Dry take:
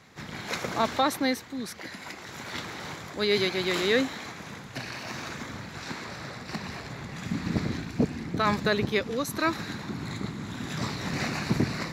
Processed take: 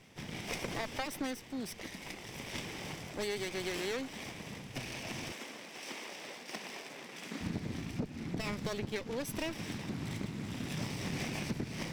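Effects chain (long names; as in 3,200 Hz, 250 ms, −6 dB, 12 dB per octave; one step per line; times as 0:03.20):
lower of the sound and its delayed copy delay 0.37 ms
0:05.32–0:07.41: Bessel high-pass filter 370 Hz, order 4
downward compressor 10 to 1, threshold −30 dBFS, peak gain reduction 11.5 dB
level −3 dB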